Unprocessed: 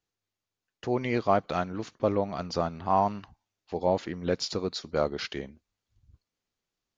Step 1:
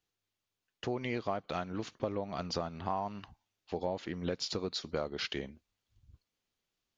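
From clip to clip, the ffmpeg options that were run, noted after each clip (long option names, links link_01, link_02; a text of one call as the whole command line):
ffmpeg -i in.wav -af "equalizer=frequency=3100:width_type=o:width=0.83:gain=4,acompressor=threshold=-30dB:ratio=6,volume=-1dB" out.wav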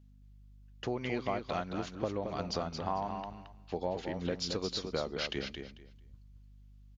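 ffmpeg -i in.wav -filter_complex "[0:a]aeval=exprs='val(0)+0.00141*(sin(2*PI*50*n/s)+sin(2*PI*2*50*n/s)/2+sin(2*PI*3*50*n/s)/3+sin(2*PI*4*50*n/s)/4+sin(2*PI*5*50*n/s)/5)':channel_layout=same,asplit=2[link_01][link_02];[link_02]aecho=0:1:222|444|666:0.473|0.0899|0.0171[link_03];[link_01][link_03]amix=inputs=2:normalize=0" out.wav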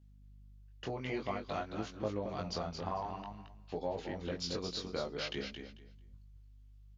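ffmpeg -i in.wav -af "flanger=delay=18.5:depth=4.3:speed=0.53" out.wav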